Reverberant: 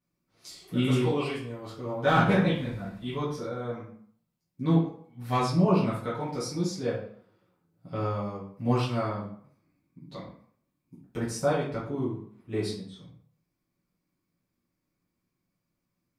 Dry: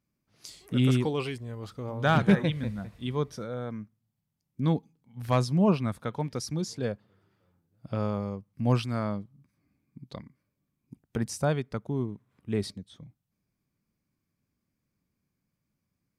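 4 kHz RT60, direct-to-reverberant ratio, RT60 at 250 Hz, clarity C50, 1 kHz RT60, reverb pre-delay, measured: 0.40 s, -11.0 dB, 0.50 s, 3.5 dB, 0.60 s, 4 ms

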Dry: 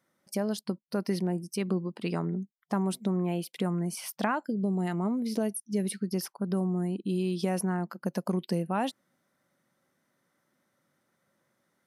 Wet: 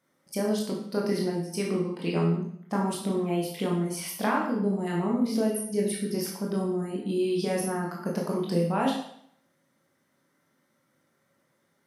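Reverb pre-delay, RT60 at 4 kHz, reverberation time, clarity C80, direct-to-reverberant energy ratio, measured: 19 ms, 0.60 s, 0.65 s, 7.0 dB, -3.0 dB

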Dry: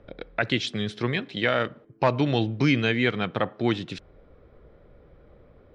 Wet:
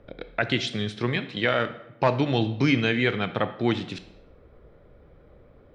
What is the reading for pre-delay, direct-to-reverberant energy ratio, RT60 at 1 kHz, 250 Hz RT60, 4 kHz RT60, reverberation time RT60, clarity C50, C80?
17 ms, 11.0 dB, 0.90 s, 0.90 s, 0.65 s, 0.90 s, 13.5 dB, 16.0 dB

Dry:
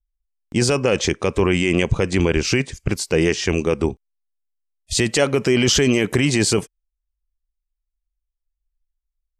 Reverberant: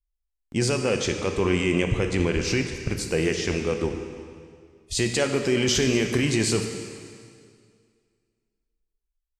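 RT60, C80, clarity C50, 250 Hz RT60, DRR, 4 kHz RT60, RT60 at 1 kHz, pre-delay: 2.1 s, 7.0 dB, 6.0 dB, 2.2 s, 4.5 dB, 2.0 s, 2.1 s, 4 ms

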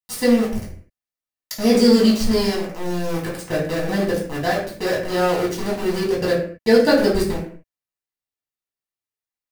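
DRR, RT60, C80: -6.0 dB, not exponential, 9.0 dB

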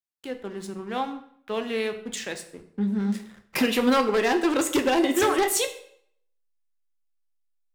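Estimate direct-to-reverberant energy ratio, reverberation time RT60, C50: 6.5 dB, 0.60 s, 11.5 dB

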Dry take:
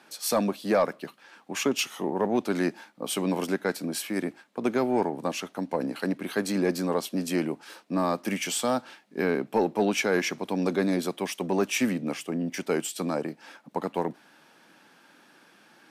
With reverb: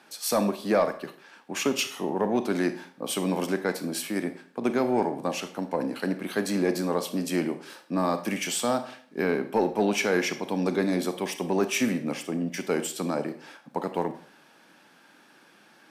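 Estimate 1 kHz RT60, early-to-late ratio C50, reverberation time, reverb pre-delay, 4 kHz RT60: 0.50 s, 12.5 dB, 0.50 s, 31 ms, 0.45 s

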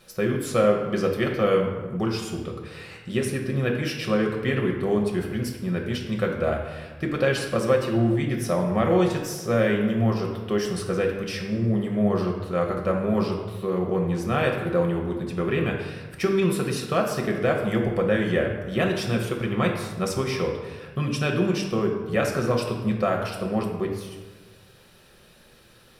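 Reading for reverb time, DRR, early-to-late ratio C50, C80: 1.3 s, 0.0 dB, 5.0 dB, 7.0 dB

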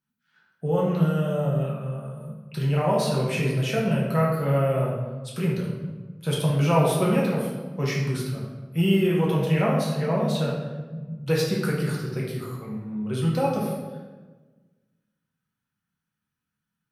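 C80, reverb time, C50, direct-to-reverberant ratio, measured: 4.0 dB, 1.4 s, 1.0 dB, -5.0 dB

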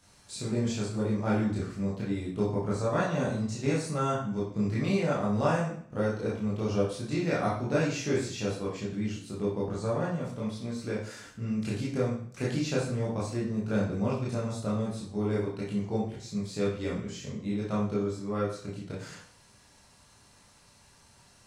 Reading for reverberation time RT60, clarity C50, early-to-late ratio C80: 0.55 s, 3.0 dB, 7.5 dB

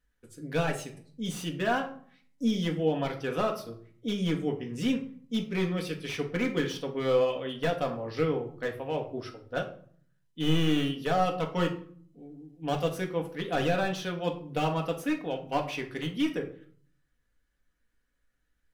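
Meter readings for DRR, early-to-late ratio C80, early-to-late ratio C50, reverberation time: 1.5 dB, 15.0 dB, 10.5 dB, 0.50 s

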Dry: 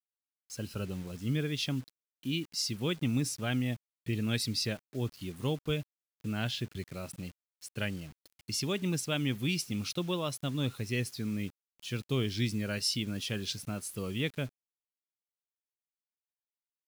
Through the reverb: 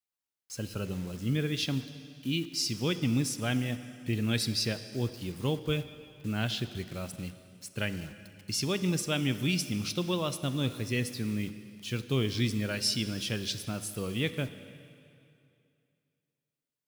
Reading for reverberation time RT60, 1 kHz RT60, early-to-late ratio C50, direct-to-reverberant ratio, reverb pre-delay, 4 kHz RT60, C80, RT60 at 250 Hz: 2.5 s, 2.6 s, 12.0 dB, 11.0 dB, 6 ms, 2.3 s, 13.0 dB, 2.4 s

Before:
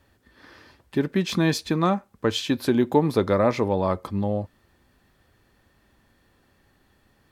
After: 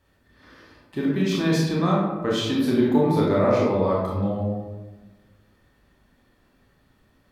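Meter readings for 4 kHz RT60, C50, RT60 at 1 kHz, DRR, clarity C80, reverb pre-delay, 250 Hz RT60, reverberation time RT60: 0.65 s, 0.0 dB, 1.1 s, -5.0 dB, 3.0 dB, 22 ms, 1.5 s, 1.2 s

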